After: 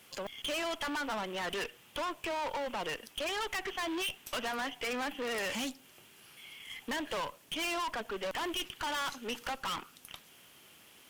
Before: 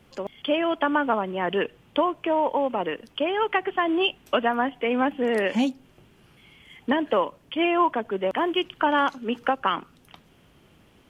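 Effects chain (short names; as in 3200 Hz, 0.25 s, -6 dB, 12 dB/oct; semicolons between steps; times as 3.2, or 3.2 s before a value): tilt +4 dB/oct; tube stage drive 33 dB, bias 0.45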